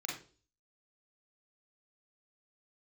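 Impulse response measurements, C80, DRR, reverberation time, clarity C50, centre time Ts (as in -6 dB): 10.5 dB, -3.0 dB, 0.40 s, 3.5 dB, 37 ms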